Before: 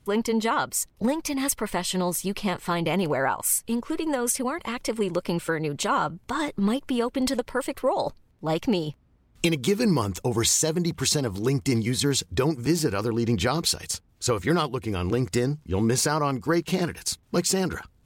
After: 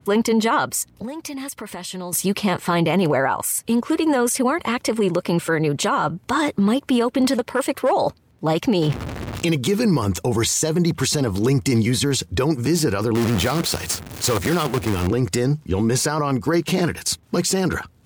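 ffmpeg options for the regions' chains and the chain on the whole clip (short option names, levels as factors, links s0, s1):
-filter_complex "[0:a]asettb=1/sr,asplit=3[s0][s1][s2];[s0]atrim=end=0.824[s3];[s1]atrim=start=0.82:end=2.13,asetpts=PTS-STARTPTS,afade=t=in:d=0.004:c=qsin,afade=t=out:st=1.306:d=0.004:c=qsin,aeval=exprs='val(0)+0.00112*(sin(2*PI*60*n/s)+sin(2*PI*2*60*n/s)/2+sin(2*PI*3*60*n/s)/3+sin(2*PI*4*60*n/s)/4+sin(2*PI*5*60*n/s)/5)':c=same,acompressor=threshold=0.0126:ratio=5:attack=3.2:release=140:knee=1:detection=peak[s4];[s2]atrim=start=2.126[s5];[s3][s4]acrossfade=d=0.004:c1=hsin:c2=qsin[s6];[s6][s5]acrossfade=d=0.004:c1=qsin:c2=hsin,asettb=1/sr,asplit=3[s7][s8][s9];[s7]atrim=end=7.244[s10];[s8]atrim=start=7.24:end=7.93,asetpts=PTS-STARTPTS,afade=t=in:d=0.004:c=qsin,afade=t=out:st=0.686:d=0.004:c=qsin,lowshelf=f=62:g=-11,aeval=exprs='clip(val(0),-1,0.0891)':c=same,highpass=48[s11];[s9]atrim=start=7.926[s12];[s10][s11]acrossfade=d=0.004:c1=hsin:c2=qsin[s13];[s13][s12]acrossfade=d=0.004:c1=qsin:c2=hsin,asettb=1/sr,asplit=3[s14][s15][s16];[s14]atrim=end=8.824[s17];[s15]atrim=start=8.82:end=9.48,asetpts=PTS-STARTPTS,afade=t=in:d=0.004:c=qsin,afade=t=out:st=0.656:d=0.004:c=qsin,aeval=exprs='val(0)+0.5*0.0178*sgn(val(0))':c=same,highshelf=f=6900:g=-10.5,acontrast=27[s18];[s16]atrim=start=9.476[s19];[s17][s18]acrossfade=d=0.004:c1=hsin:c2=qsin[s20];[s20][s19]acrossfade=d=0.004:c1=qsin:c2=hsin,asettb=1/sr,asplit=3[s21][s22][s23];[s21]atrim=end=13.154[s24];[s22]atrim=start=13.15:end=15.07,asetpts=PTS-STARTPTS,afade=t=in:d=0.004:c=qsin,afade=t=out:st=1.916:d=0.004:c=qsin,aeval=exprs='val(0)+0.5*0.0355*sgn(val(0))':c=same,acrusher=bits=5:dc=4:mix=0:aa=0.000001[s25];[s23]atrim=start=15.066[s26];[s24][s25]acrossfade=d=0.004:c1=hsin:c2=qsin[s27];[s27][s26]acrossfade=d=0.004:c1=qsin:c2=hsin,highpass=f=74:w=0.5412,highpass=f=74:w=1.3066,alimiter=limit=0.1:level=0:latency=1:release=12,adynamicequalizer=threshold=0.00794:dfrequency=2500:dqfactor=0.7:tfrequency=2500:tqfactor=0.7:attack=5:release=100:ratio=0.375:range=1.5:mode=cutabove:tftype=highshelf,volume=2.82"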